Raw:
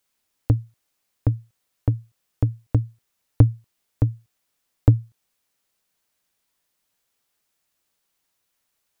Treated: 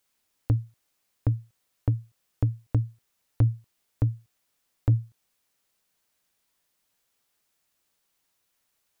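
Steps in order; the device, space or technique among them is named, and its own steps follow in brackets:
soft clipper into limiter (soft clipping −4.5 dBFS, distortion −19 dB; brickwall limiter −13.5 dBFS, peak gain reduction 8 dB)

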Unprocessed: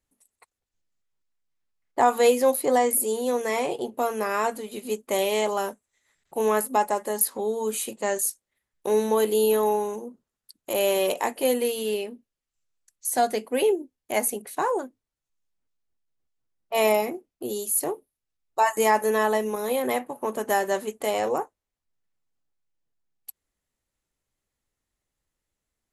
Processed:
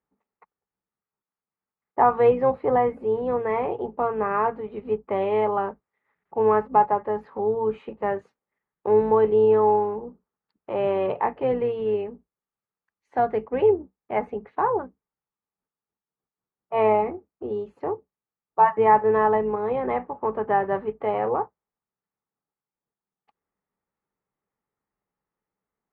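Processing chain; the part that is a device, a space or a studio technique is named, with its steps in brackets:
sub-octave bass pedal (sub-octave generator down 2 octaves, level −4 dB; loudspeaker in its box 61–2,200 Hz, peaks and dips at 63 Hz −10 dB, 94 Hz −6 dB, 190 Hz +7 dB, 430 Hz +7 dB, 850 Hz +8 dB, 1,200 Hz +7 dB)
level −3.5 dB

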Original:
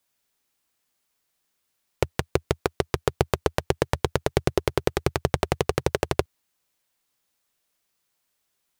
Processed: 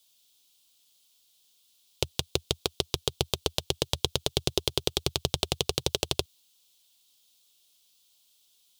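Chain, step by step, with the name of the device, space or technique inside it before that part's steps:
over-bright horn tweeter (high shelf with overshoot 2,500 Hz +10.5 dB, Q 3; brickwall limiter −1 dBFS, peak gain reduction 7.5 dB)
level −1 dB

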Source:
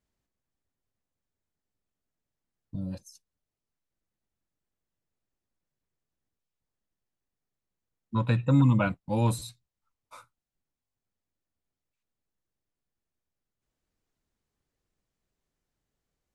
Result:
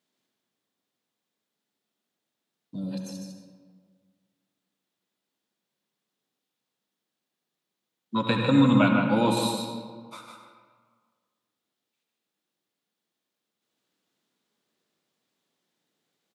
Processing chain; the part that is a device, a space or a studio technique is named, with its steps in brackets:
PA in a hall (high-pass filter 180 Hz 24 dB per octave; parametric band 3,600 Hz +8 dB 0.66 octaves; single-tap delay 152 ms −5.5 dB; convolution reverb RT60 1.7 s, pre-delay 66 ms, DRR 3 dB)
0:08.88–0:09.37: high-shelf EQ 6,500 Hz −9.5 dB
level +4 dB

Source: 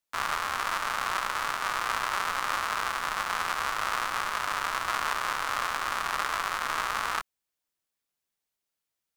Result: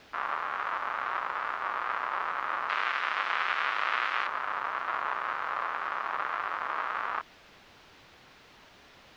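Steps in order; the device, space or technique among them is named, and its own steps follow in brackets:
wax cylinder (band-pass filter 370–2,300 Hz; tape wow and flutter; white noise bed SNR 14 dB)
0:02.69–0:04.27: meter weighting curve D
high-frequency loss of the air 250 metres

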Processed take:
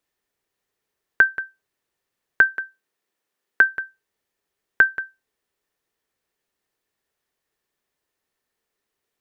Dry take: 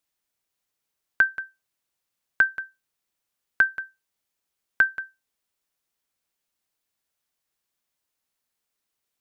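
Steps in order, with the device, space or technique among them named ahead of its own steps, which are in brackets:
inside a helmet (high-shelf EQ 3,300 Hz −7.5 dB; hollow resonant body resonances 410/1,800 Hz, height 8 dB, ringing for 25 ms)
0:02.50–0:03.64: high-pass filter 180 Hz
level +5 dB

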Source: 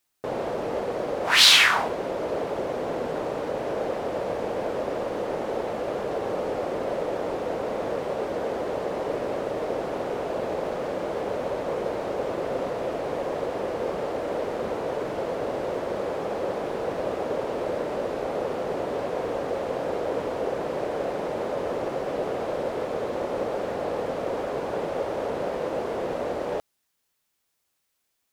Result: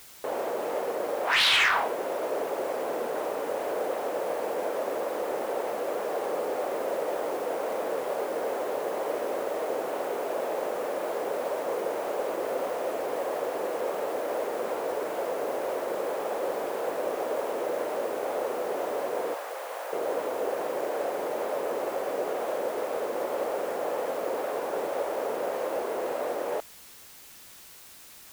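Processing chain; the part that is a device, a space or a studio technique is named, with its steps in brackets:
tape answering machine (band-pass filter 380–3,000 Hz; soft clipping −16 dBFS, distortion −18 dB; tape wow and flutter; white noise bed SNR 19 dB)
0:19.34–0:19.93: high-pass filter 820 Hz 12 dB per octave

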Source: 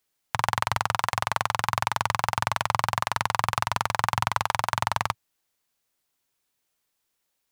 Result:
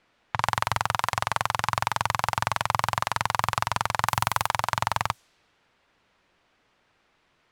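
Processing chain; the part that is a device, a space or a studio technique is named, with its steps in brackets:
cassette deck with a dynamic noise filter (white noise bed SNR 30 dB; low-pass that shuts in the quiet parts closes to 2,300 Hz, open at −23 dBFS)
0:04.08–0:04.48: high-shelf EQ 8,400 Hz +11 dB

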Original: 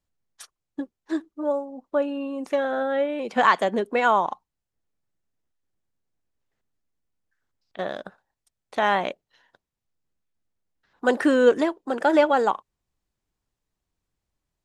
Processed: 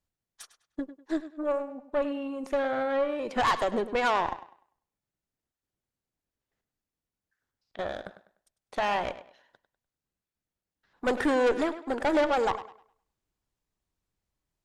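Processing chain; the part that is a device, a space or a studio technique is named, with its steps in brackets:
rockabilly slapback (tube saturation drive 20 dB, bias 0.6; tape delay 101 ms, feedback 31%, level −12 dB, low-pass 5,800 Hz)

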